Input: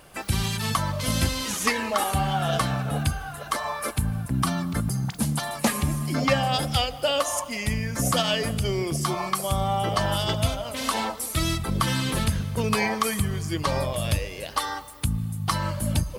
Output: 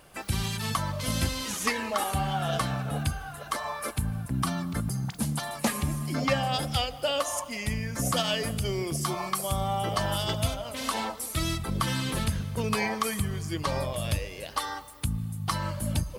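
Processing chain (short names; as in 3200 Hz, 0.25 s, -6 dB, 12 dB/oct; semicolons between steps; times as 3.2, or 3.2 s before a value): 8.16–10.54 high shelf 7800 Hz +4.5 dB; gain -4 dB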